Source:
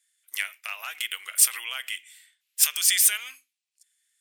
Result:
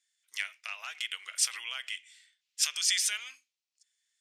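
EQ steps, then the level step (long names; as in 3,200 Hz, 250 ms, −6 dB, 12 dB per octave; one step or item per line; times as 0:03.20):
low-pass with resonance 5,800 Hz, resonance Q 1.7
low-shelf EQ 240 Hz −5 dB
−6.0 dB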